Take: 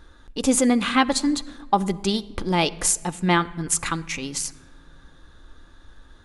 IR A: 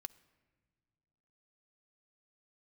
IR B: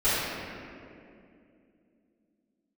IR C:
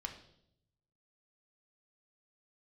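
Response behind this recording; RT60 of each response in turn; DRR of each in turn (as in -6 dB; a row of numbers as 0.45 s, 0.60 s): A; no single decay rate, 2.5 s, 0.75 s; 12.0 dB, -17.5 dB, 3.0 dB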